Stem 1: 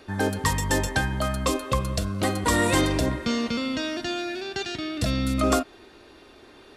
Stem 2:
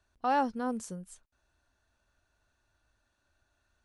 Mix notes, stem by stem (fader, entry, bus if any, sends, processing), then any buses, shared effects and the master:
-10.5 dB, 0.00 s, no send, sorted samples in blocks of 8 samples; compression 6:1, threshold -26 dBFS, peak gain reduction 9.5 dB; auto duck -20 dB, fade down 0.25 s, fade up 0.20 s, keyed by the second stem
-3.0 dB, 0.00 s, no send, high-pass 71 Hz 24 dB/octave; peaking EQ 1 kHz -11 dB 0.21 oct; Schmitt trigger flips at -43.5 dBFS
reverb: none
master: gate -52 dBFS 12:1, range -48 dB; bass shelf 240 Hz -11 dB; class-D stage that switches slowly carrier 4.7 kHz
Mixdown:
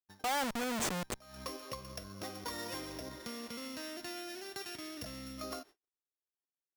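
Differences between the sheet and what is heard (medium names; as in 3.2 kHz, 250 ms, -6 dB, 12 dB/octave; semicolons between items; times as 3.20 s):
stem 2 -3.0 dB -> +7.5 dB; master: missing class-D stage that switches slowly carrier 4.7 kHz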